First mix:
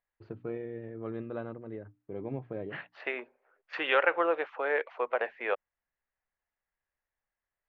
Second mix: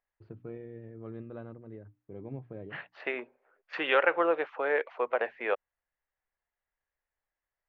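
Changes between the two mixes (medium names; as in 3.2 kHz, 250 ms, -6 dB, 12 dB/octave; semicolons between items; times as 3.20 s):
first voice -8.0 dB; master: add bass shelf 220 Hz +9 dB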